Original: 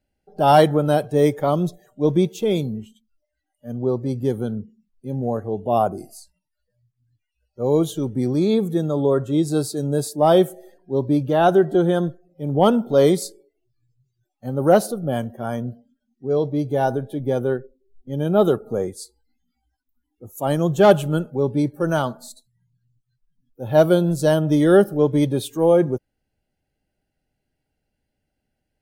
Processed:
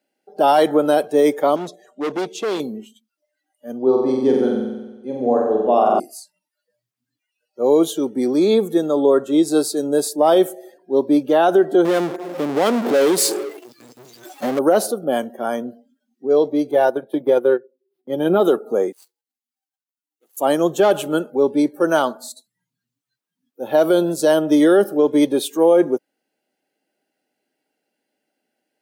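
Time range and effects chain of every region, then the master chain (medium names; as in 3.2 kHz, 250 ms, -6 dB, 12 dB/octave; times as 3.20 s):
1.56–2.60 s: low-pass 7.8 kHz + bass shelf 110 Hz -6.5 dB + hard clipper -24.5 dBFS
3.82–6.00 s: distance through air 89 m + flutter echo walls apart 7.9 m, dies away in 1.1 s
11.85–14.59 s: power-law waveshaper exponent 0.5 + compression 3:1, threshold -21 dBFS
16.71–18.40 s: peaking EQ 6.9 kHz -11.5 dB 0.62 oct + comb 5.7 ms, depth 51% + transient shaper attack +5 dB, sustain -10 dB
18.92–20.37 s: median filter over 25 samples + differentiator + band-stop 2.4 kHz, Q 20
whole clip: high-pass 260 Hz 24 dB/octave; peak limiter -11.5 dBFS; trim +5.5 dB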